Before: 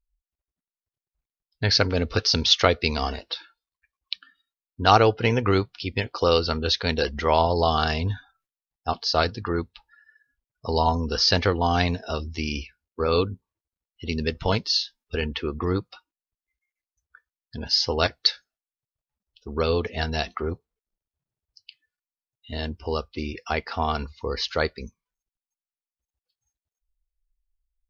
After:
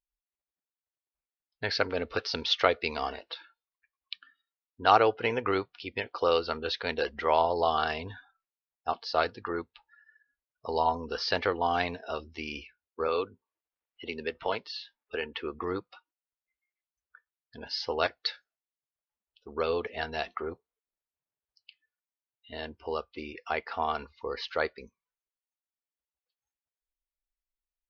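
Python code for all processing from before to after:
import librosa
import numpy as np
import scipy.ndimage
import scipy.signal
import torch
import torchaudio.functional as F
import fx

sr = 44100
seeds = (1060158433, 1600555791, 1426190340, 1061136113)

y = fx.chain(x, sr, fx.bass_treble(bass_db=-7, treble_db=-6),
    fx.band_squash(depth_pct=40), at=(13.08, 15.35))
y = scipy.signal.sosfilt(scipy.signal.butter(2, 5100.0, 'lowpass', fs=sr, output='sos'), y)
y = fx.bass_treble(y, sr, bass_db=-15, treble_db=-10)
y = y * librosa.db_to_amplitude(-3.5)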